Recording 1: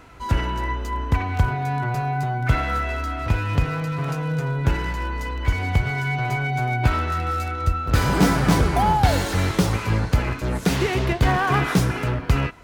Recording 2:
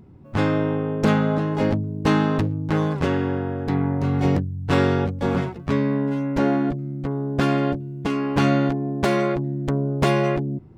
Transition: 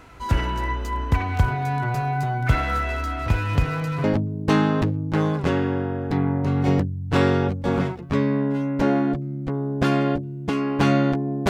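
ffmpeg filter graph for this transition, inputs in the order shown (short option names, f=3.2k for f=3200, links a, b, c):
-filter_complex "[0:a]apad=whole_dur=11.49,atrim=end=11.49,atrim=end=4.042[a];[1:a]atrim=start=1.608:end=9.06[b];[a][b]acrossfade=d=0.004:c1=hsin:c2=hsin"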